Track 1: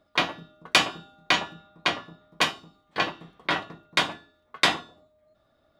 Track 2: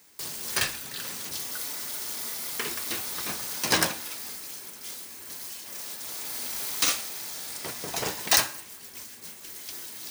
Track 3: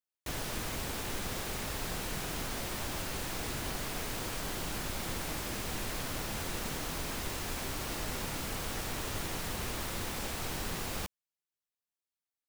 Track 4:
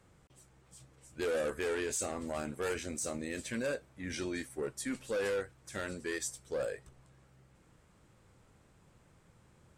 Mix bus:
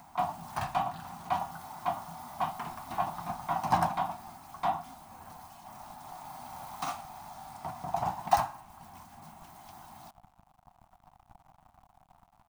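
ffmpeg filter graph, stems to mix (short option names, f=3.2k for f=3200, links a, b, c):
-filter_complex "[0:a]asoftclip=type=tanh:threshold=-16.5dB,volume=-3dB[a];[1:a]acompressor=mode=upward:threshold=-32dB:ratio=2.5,volume=1.5dB[b];[2:a]acrusher=bits=4:mix=0:aa=0.000001,adelay=2150,volume=-16dB[c];[3:a]volume=-15.5dB[d];[a][b][c][d]amix=inputs=4:normalize=0,firequalizer=gain_entry='entry(180,0);entry(470,-26);entry(720,9);entry(1700,-16);entry(4700,-23)':delay=0.05:min_phase=1"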